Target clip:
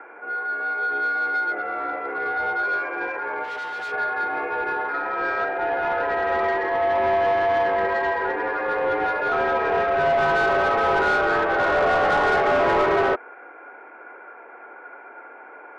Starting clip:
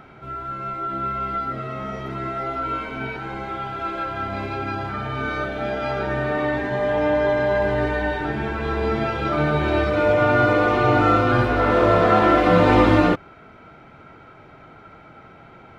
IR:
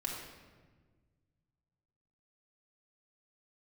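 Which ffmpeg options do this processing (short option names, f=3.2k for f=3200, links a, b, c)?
-filter_complex "[0:a]highpass=f=230:t=q:w=0.5412,highpass=f=230:t=q:w=1.307,lowpass=f=2.2k:t=q:w=0.5176,lowpass=f=2.2k:t=q:w=0.7071,lowpass=f=2.2k:t=q:w=1.932,afreqshift=86,asplit=3[a][b][c];[a]afade=t=out:st=3.43:d=0.02[d];[b]volume=33dB,asoftclip=hard,volume=-33dB,afade=t=in:st=3.43:d=0.02,afade=t=out:st=3.91:d=0.02[e];[c]afade=t=in:st=3.91:d=0.02[f];[d][e][f]amix=inputs=3:normalize=0,asplit=2[g][h];[h]highpass=f=720:p=1,volume=21dB,asoftclip=type=tanh:threshold=-4dB[i];[g][i]amix=inputs=2:normalize=0,lowpass=f=1.7k:p=1,volume=-6dB,volume=-7.5dB"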